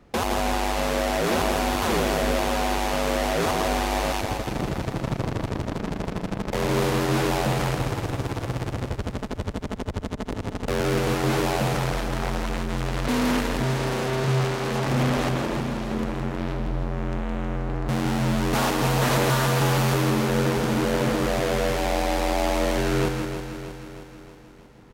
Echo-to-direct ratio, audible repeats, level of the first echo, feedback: −3.0 dB, 12, −5.5 dB, repeats not evenly spaced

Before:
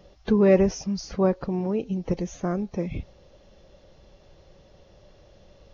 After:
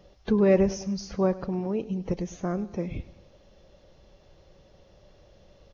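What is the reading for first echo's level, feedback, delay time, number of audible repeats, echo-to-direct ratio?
−18.0 dB, 52%, 102 ms, 3, −16.5 dB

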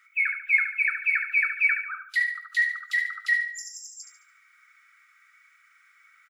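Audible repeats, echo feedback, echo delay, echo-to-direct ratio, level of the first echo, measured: 4, 40%, 72 ms, −7.5 dB, −8.0 dB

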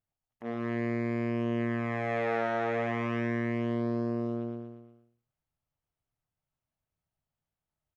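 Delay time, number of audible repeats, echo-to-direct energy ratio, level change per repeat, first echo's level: 119 ms, 5, −3.0 dB, −6.0 dB, −4.5 dB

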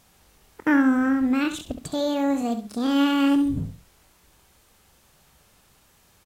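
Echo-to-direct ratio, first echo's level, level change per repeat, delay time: −9.5 dB, −10.0 dB, −11.5 dB, 68 ms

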